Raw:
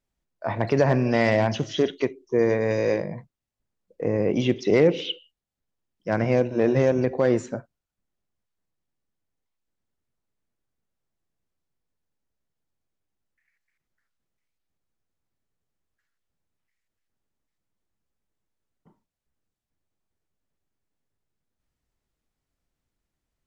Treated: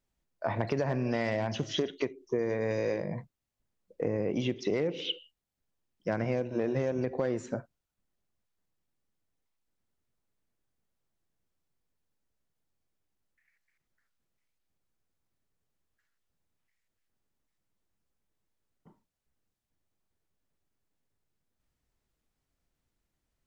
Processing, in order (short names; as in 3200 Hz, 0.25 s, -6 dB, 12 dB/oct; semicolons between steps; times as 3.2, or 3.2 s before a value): compressor 6:1, threshold -27 dBFS, peak gain reduction 13.5 dB